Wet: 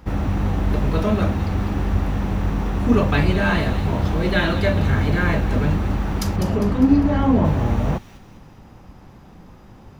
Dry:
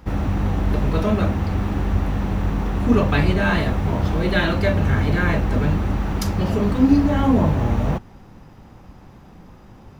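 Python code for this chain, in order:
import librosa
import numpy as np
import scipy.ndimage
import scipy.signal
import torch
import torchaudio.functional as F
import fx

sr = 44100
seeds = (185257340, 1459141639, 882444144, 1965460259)

y = fx.high_shelf(x, sr, hz=4800.0, db=-11.5, at=(6.36, 7.45))
y = fx.echo_wet_highpass(y, sr, ms=201, feedback_pct=46, hz=3000.0, wet_db=-7.5)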